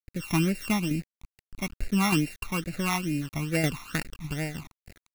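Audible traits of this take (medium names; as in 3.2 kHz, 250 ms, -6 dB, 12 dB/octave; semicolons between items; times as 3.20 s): a buzz of ramps at a fixed pitch in blocks of 16 samples; tremolo saw down 3.3 Hz, depth 55%; a quantiser's noise floor 8-bit, dither none; phasing stages 12, 2.3 Hz, lowest notch 500–1100 Hz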